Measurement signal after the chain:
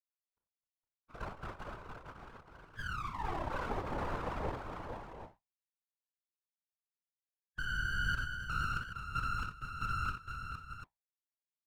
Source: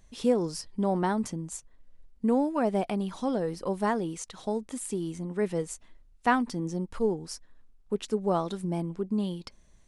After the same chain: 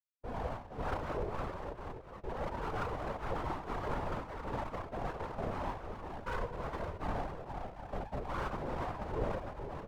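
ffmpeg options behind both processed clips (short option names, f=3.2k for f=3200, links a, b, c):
-filter_complex "[0:a]acrusher=bits=4:mix=0:aa=0.000001,bandreject=f=60:t=h:w=6,bandreject=f=120:t=h:w=6,bandreject=f=180:t=h:w=6,bandreject=f=240:t=h:w=6,bandreject=f=300:t=h:w=6,bandreject=f=360:t=h:w=6,bandreject=f=420:t=h:w=6,bandreject=f=480:t=h:w=6,afftfilt=real='re*between(b*sr/4096,120,830)':imag='im*between(b*sr/4096,120,830)':win_size=4096:overlap=0.75,asplit=2[a][b];[b]adelay=33,volume=-5dB[c];[a][c]amix=inputs=2:normalize=0,afftdn=nr=26:nf=-46,areverse,acompressor=threshold=-40dB:ratio=10,areverse,bandreject=f=510:w=12,aecho=1:1:47|62|260|462|645|744:0.299|0.422|0.178|0.562|0.126|0.335,aeval=exprs='abs(val(0))':c=same,lowshelf=f=350:g=-5.5,afftfilt=real='hypot(re,im)*cos(2*PI*random(0))':imag='hypot(re,im)*sin(2*PI*random(1))':win_size=512:overlap=0.75,volume=15dB"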